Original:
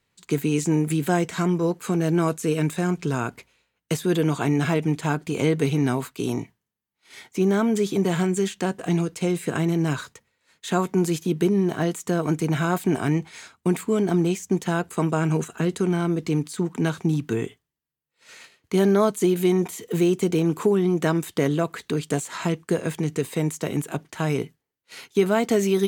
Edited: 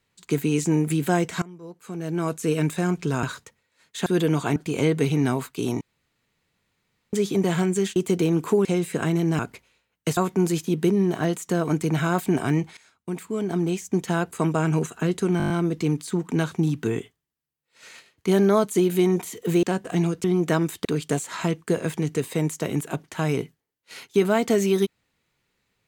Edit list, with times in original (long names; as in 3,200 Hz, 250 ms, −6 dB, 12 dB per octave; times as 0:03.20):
0:01.42–0:02.48: fade in quadratic, from −21.5 dB
0:03.23–0:04.01: swap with 0:09.92–0:10.75
0:04.51–0:05.17: remove
0:06.42–0:07.74: fill with room tone
0:08.57–0:09.18: swap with 0:20.09–0:20.78
0:13.35–0:14.67: fade in, from −17 dB
0:15.96: stutter 0.02 s, 7 plays
0:21.39–0:21.86: remove